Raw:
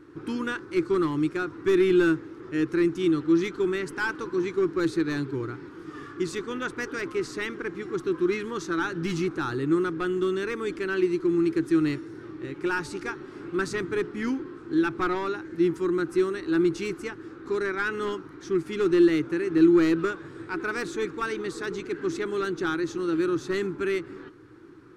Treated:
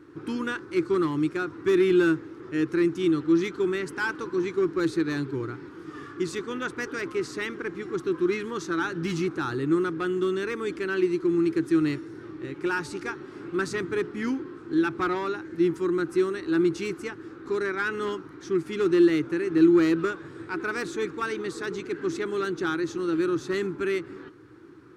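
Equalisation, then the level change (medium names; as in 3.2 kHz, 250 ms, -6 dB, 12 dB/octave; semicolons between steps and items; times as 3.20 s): high-pass 52 Hz; 0.0 dB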